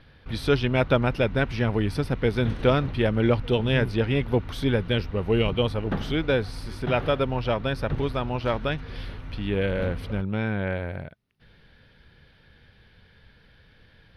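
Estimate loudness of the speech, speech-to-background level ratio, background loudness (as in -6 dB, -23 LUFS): -25.5 LUFS, 12.0 dB, -37.5 LUFS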